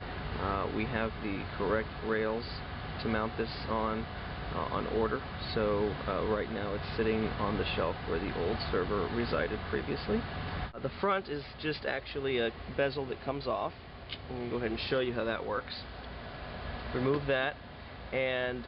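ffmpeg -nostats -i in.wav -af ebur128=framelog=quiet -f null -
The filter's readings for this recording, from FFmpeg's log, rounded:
Integrated loudness:
  I:         -33.8 LUFS
  Threshold: -44.0 LUFS
Loudness range:
  LRA:         2.5 LU
  Threshold: -54.0 LUFS
  LRA low:   -35.2 LUFS
  LRA high:  -32.7 LUFS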